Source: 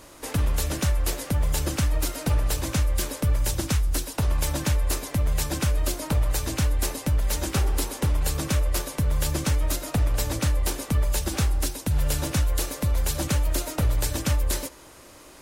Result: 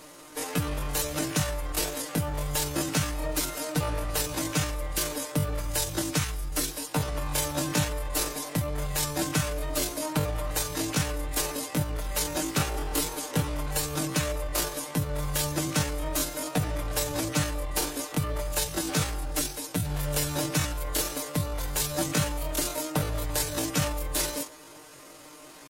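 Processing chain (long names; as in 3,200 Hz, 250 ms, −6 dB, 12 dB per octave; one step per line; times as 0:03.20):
low-shelf EQ 100 Hz −12 dB
comb filter 6.6 ms, depth 56%
tempo change 0.6×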